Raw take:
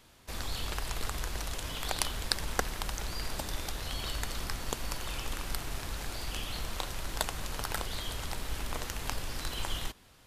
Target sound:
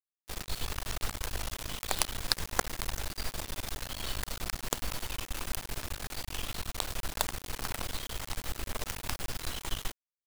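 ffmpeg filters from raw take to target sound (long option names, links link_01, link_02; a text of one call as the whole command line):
ffmpeg -i in.wav -af "acrusher=bits=4:dc=4:mix=0:aa=0.000001,volume=2dB" out.wav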